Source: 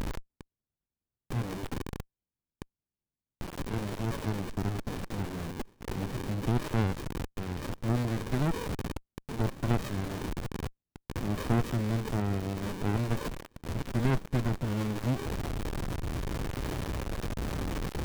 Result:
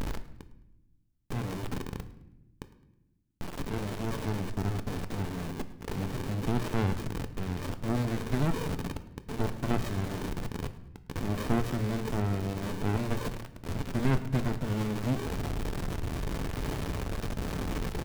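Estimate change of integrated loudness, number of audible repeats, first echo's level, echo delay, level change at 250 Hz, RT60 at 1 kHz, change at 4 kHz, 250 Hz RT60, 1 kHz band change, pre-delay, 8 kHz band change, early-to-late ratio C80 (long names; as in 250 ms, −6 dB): 0.0 dB, 2, −21.0 dB, 106 ms, +0.5 dB, 0.75 s, +0.5 dB, 1.7 s, +0.5 dB, 5 ms, +0.5 dB, 15.0 dB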